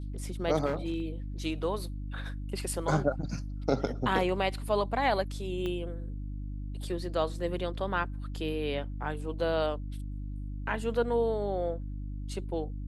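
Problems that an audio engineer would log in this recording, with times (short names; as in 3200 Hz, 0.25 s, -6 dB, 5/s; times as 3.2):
hum 50 Hz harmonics 6 -37 dBFS
0.65–1.02 clipped -25.5 dBFS
5.66 pop -23 dBFS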